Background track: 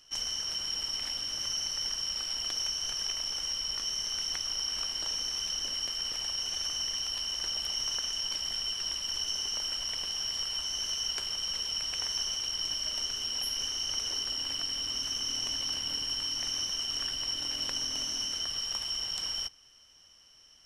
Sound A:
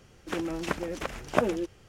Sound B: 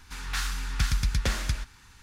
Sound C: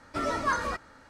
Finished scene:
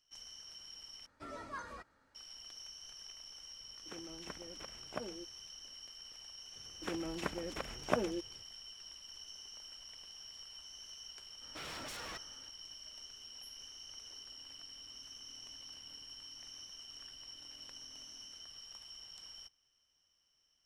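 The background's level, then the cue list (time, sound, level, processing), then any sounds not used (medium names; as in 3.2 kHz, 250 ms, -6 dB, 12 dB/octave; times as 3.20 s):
background track -18 dB
1.06 s: replace with C -17.5 dB
3.59 s: add A -18 dB
6.55 s: add A -8 dB
11.41 s: add C -9.5 dB + wavefolder -32 dBFS
not used: B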